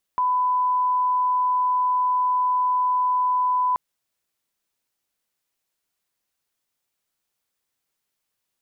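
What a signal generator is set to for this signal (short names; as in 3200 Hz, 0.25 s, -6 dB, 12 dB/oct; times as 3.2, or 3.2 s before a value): line-up tone -18 dBFS 3.58 s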